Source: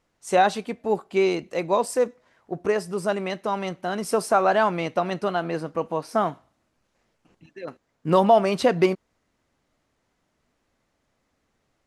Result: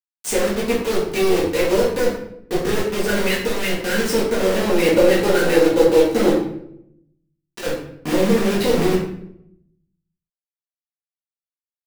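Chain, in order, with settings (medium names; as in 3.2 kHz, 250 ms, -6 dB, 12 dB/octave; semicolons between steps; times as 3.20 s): low-pass that closes with the level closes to 420 Hz, closed at -15 dBFS; Chebyshev band-stop 500–1500 Hz, order 3; dynamic bell 750 Hz, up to +4 dB, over -36 dBFS, Q 1.2; harmonic-percussive split percussive +9 dB; bass shelf 230 Hz -3.5 dB; peak limiter -15.5 dBFS, peak gain reduction 11 dB; one-sided clip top -28.5 dBFS, bottom -18.5 dBFS; bit crusher 5-bit; 4.58–7.62 s: small resonant body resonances 340/530/800/3900 Hz, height 9 dB, ringing for 35 ms; reverberation RT60 0.75 s, pre-delay 4 ms, DRR -6 dB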